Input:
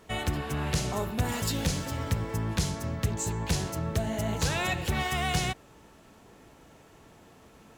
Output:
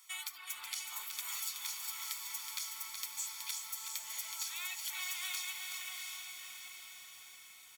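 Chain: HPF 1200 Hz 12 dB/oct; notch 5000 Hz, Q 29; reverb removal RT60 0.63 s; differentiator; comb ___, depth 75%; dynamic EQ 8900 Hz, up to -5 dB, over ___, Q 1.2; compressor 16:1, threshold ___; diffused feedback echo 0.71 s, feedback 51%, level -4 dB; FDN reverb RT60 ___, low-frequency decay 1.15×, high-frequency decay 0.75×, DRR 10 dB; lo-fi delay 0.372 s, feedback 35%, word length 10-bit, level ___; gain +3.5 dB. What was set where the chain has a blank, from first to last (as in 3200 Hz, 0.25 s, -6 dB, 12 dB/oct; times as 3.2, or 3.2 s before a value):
0.9 ms, -49 dBFS, -41 dBFS, 0.36 s, -6 dB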